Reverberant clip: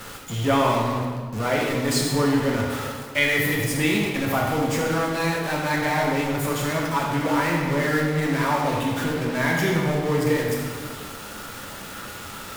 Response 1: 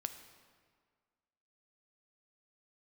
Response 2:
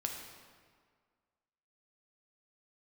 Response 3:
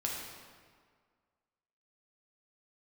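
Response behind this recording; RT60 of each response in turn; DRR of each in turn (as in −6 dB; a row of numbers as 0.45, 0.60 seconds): 3; 1.8, 1.8, 1.8 seconds; 8.0, 1.5, −2.5 decibels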